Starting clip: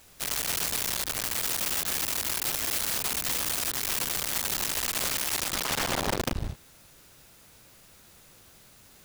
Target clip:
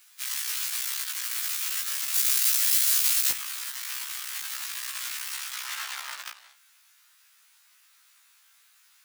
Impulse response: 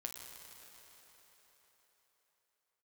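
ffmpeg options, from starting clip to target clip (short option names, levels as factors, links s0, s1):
-af "highpass=f=1200:w=0.5412,highpass=f=1200:w=1.3066,asetnsamples=n=441:p=0,asendcmd='2.14 highshelf g 10.5;3.31 highshelf g -3',highshelf=f=3000:g=2,afftfilt=real='re*1.73*eq(mod(b,3),0)':imag='im*1.73*eq(mod(b,3),0)':win_size=2048:overlap=0.75"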